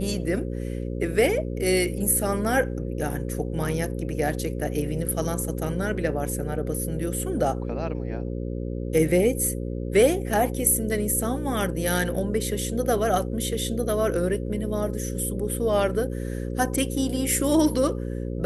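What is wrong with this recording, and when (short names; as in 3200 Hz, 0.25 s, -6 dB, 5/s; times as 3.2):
buzz 60 Hz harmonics 9 -30 dBFS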